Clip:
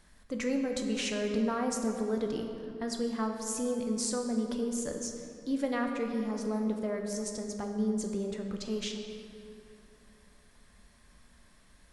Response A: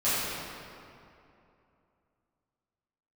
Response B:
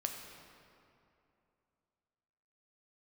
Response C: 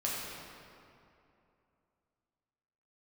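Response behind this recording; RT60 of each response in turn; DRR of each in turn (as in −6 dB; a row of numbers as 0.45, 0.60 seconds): B; 2.7, 2.7, 2.7 seconds; −14.5, 2.5, −6.0 decibels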